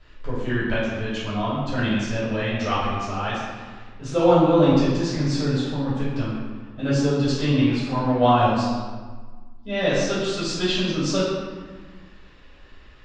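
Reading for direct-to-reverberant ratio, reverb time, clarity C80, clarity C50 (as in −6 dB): −11.0 dB, 1.5 s, 1.0 dB, −1.5 dB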